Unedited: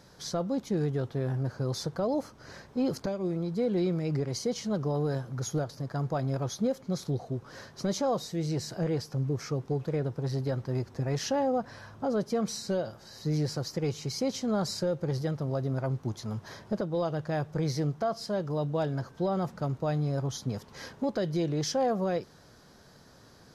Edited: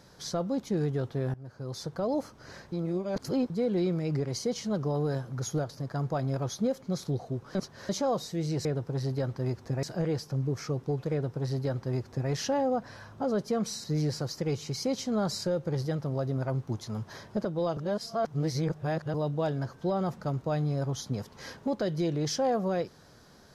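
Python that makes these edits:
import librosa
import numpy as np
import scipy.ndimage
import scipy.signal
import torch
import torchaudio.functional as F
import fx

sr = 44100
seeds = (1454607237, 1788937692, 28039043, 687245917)

y = fx.edit(x, sr, fx.fade_in_from(start_s=1.34, length_s=0.8, floor_db=-20.0),
    fx.reverse_span(start_s=2.72, length_s=0.78),
    fx.reverse_span(start_s=7.55, length_s=0.34),
    fx.duplicate(start_s=9.94, length_s=1.18, to_s=8.65),
    fx.cut(start_s=12.66, length_s=0.54),
    fx.reverse_span(start_s=17.13, length_s=1.37), tone=tone)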